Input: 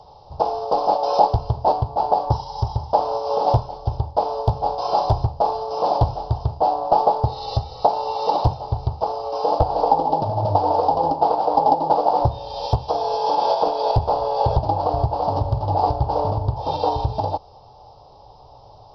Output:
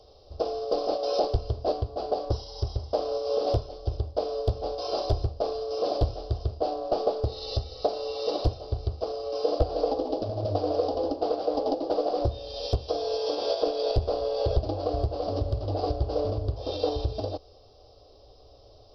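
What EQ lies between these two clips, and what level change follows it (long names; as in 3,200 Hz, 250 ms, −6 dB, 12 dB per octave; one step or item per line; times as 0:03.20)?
phaser with its sweep stopped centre 370 Hz, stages 4
−1.0 dB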